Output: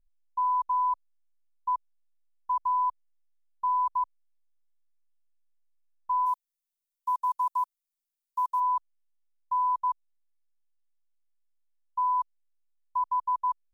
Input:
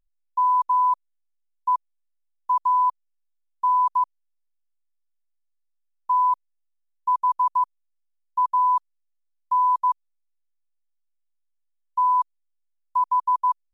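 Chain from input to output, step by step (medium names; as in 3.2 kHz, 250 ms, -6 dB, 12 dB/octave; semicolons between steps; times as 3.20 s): tilt EQ -2 dB/octave, from 6.25 s +4 dB/octave, from 8.59 s -1.5 dB/octave; trim -6.5 dB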